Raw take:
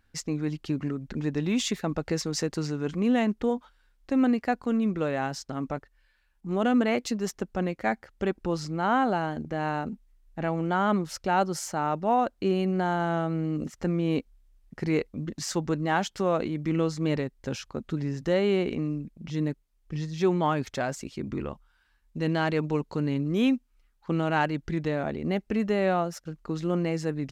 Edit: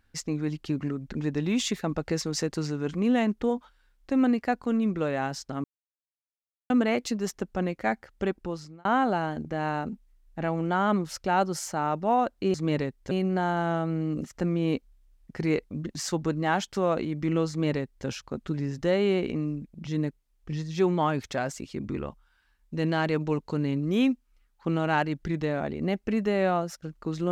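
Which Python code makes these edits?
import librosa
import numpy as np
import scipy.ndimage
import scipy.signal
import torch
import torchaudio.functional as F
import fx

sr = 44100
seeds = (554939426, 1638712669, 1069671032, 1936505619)

y = fx.edit(x, sr, fx.silence(start_s=5.64, length_s=1.06),
    fx.fade_out_span(start_s=8.25, length_s=0.6),
    fx.duplicate(start_s=16.92, length_s=0.57, to_s=12.54), tone=tone)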